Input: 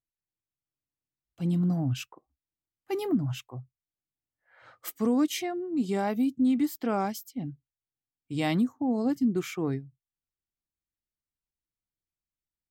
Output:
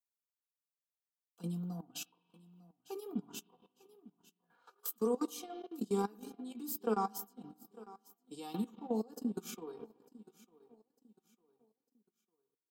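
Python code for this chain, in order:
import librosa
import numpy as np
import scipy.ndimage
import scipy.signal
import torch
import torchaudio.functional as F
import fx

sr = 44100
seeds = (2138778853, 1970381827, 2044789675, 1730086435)

p1 = fx.fixed_phaser(x, sr, hz=400.0, stages=8)
p2 = p1 + 0.65 * np.pad(p1, (int(4.2 * sr / 1000.0), 0))[:len(p1)]
p3 = fx.rev_spring(p2, sr, rt60_s=1.3, pass_ms=(40, 51, 58), chirp_ms=50, drr_db=10.5)
p4 = fx.level_steps(p3, sr, step_db=14)
p5 = scipy.signal.sosfilt(scipy.signal.butter(4, 230.0, 'highpass', fs=sr, output='sos'), p4)
p6 = fx.high_shelf(p5, sr, hz=9200.0, db=8.0)
p7 = p6 + fx.echo_feedback(p6, sr, ms=901, feedback_pct=34, wet_db=-19.5, dry=0)
p8 = fx.chorus_voices(p7, sr, voices=2, hz=0.34, base_ms=17, depth_ms=2.6, mix_pct=25)
y = fx.transient(p8, sr, attack_db=2, sustain_db=-10)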